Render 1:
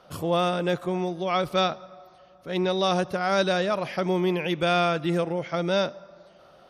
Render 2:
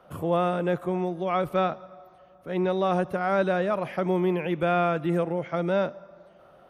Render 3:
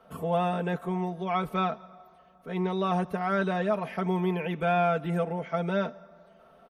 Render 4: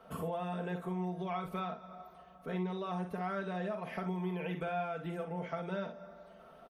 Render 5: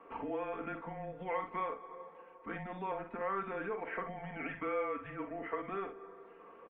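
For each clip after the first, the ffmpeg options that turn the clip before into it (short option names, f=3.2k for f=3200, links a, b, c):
-filter_complex "[0:a]equalizer=f=4.9k:t=o:w=1.2:g=-14.5,acrossover=split=220|3000[a][b][c];[c]alimiter=level_in=19.5dB:limit=-24dB:level=0:latency=1:release=21,volume=-19.5dB[d];[a][b][d]amix=inputs=3:normalize=0"
-af "aecho=1:1:4.5:0.77,volume=-3.5dB"
-filter_complex "[0:a]acompressor=threshold=-36dB:ratio=6,asplit=2[a][b];[b]aecho=0:1:44|61:0.355|0.299[c];[a][c]amix=inputs=2:normalize=0"
-af "highpass=f=220:t=q:w=0.5412,highpass=f=220:t=q:w=1.307,lowpass=f=2.5k:t=q:w=0.5176,lowpass=f=2.5k:t=q:w=0.7071,lowpass=f=2.5k:t=q:w=1.932,afreqshift=-200,aemphasis=mode=production:type=riaa,volume=3.5dB"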